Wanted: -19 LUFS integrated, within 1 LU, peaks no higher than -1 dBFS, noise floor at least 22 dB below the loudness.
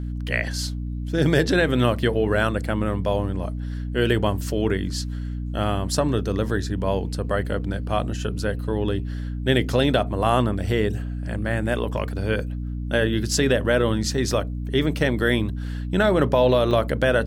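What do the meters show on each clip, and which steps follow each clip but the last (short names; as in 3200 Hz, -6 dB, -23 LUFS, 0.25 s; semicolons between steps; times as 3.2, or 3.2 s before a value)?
dropouts 1; longest dropout 3.8 ms; hum 60 Hz; harmonics up to 300 Hz; hum level -26 dBFS; loudness -23.5 LUFS; peak -5.0 dBFS; loudness target -19.0 LUFS
-> interpolate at 16.71, 3.8 ms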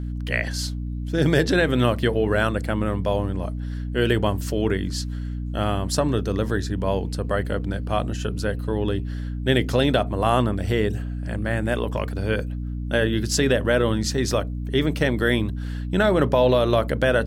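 dropouts 0; hum 60 Hz; harmonics up to 300 Hz; hum level -26 dBFS
-> de-hum 60 Hz, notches 5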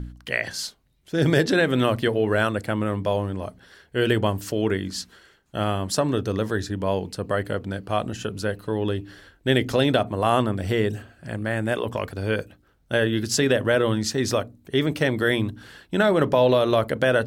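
hum none; loudness -24.0 LUFS; peak -5.0 dBFS; loudness target -19.0 LUFS
-> gain +5 dB; limiter -1 dBFS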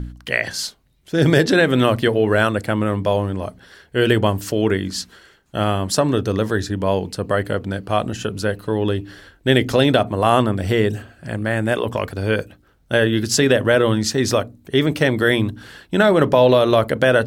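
loudness -19.0 LUFS; peak -1.0 dBFS; noise floor -55 dBFS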